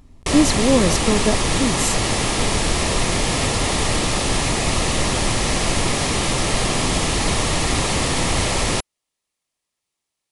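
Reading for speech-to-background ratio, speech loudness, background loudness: −0.5 dB, −20.5 LKFS, −20.0 LKFS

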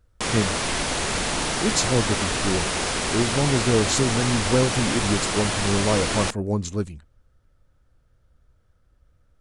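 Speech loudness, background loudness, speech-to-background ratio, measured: −25.0 LKFS, −24.0 LKFS, −1.0 dB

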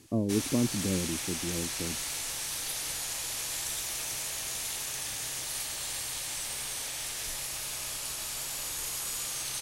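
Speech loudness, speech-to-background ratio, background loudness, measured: −32.5 LKFS, 0.5 dB, −33.0 LKFS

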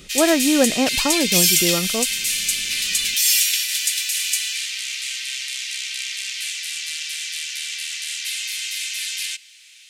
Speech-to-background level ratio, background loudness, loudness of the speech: −1.0 dB, −20.5 LKFS, −21.5 LKFS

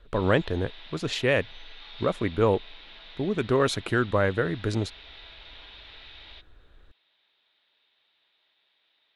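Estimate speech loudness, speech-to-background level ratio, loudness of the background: −26.5 LKFS, 19.0 dB, −45.5 LKFS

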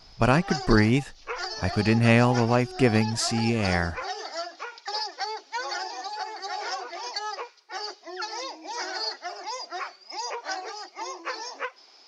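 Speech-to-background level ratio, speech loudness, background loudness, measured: 10.0 dB, −23.5 LKFS, −33.5 LKFS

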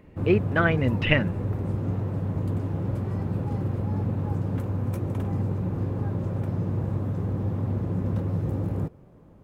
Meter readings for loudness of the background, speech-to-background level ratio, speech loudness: −28.5 LKFS, 4.0 dB, −24.5 LKFS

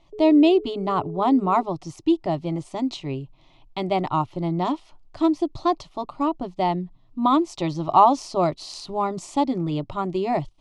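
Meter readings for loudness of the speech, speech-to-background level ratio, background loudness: −23.0 LKFS, 15.5 dB, −38.5 LKFS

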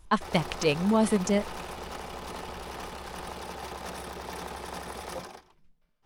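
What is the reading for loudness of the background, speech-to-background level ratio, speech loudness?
−39.0 LKFS, 12.5 dB, −26.5 LKFS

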